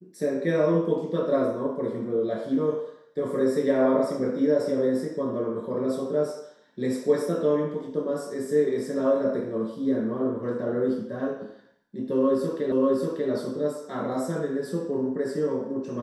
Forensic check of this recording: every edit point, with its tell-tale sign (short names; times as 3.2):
12.72 repeat of the last 0.59 s